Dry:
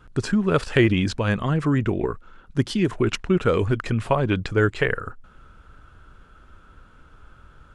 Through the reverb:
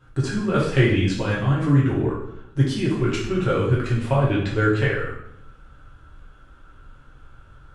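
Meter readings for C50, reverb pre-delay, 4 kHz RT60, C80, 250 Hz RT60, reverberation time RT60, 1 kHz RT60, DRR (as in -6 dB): 3.5 dB, 3 ms, 0.65 s, 7.0 dB, 0.90 s, 0.75 s, 0.70 s, -6.5 dB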